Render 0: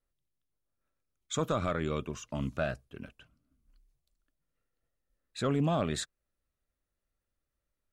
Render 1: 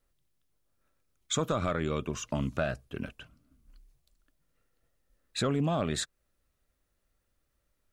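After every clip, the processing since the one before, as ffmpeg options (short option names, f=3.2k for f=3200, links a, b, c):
-af "acompressor=threshold=-38dB:ratio=2.5,volume=8.5dB"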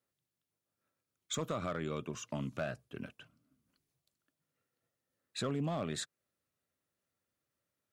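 -af "highpass=f=100:w=0.5412,highpass=f=100:w=1.3066,volume=21dB,asoftclip=hard,volume=-21dB,volume=-6.5dB"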